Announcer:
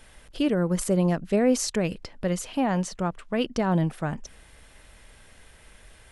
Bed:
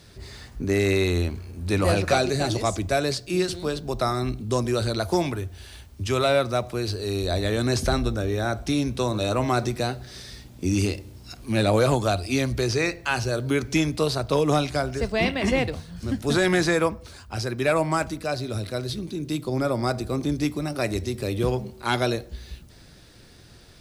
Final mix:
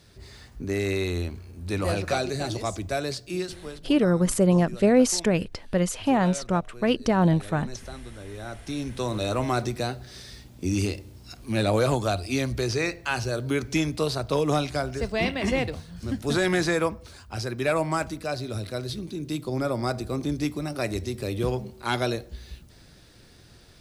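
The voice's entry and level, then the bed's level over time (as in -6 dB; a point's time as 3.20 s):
3.50 s, +3.0 dB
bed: 3.32 s -5 dB
4.02 s -17.5 dB
8.02 s -17.5 dB
9.15 s -2.5 dB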